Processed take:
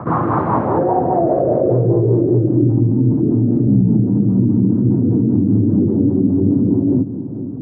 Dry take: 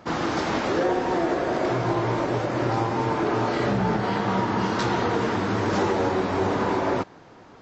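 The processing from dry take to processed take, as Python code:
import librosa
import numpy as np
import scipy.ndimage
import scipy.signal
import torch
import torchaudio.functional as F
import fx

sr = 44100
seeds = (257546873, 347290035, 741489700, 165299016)

p1 = scipy.signal.sosfilt(scipy.signal.butter(2, 4800.0, 'lowpass', fs=sr, output='sos'), x)
p2 = fx.rotary(p1, sr, hz=5.0)
p3 = scipy.signal.sosfilt(scipy.signal.butter(2, 73.0, 'highpass', fs=sr, output='sos'), p2)
p4 = fx.peak_eq(p3, sr, hz=120.0, db=13.0, octaves=1.2)
p5 = p4 + fx.echo_single(p4, sr, ms=476, db=-23.0, dry=0)
p6 = fx.filter_sweep_lowpass(p5, sr, from_hz=1100.0, to_hz=270.0, start_s=0.43, end_s=2.84, q=4.5)
p7 = fx.high_shelf(p6, sr, hz=2700.0, db=-9.5)
y = fx.env_flatten(p7, sr, amount_pct=50)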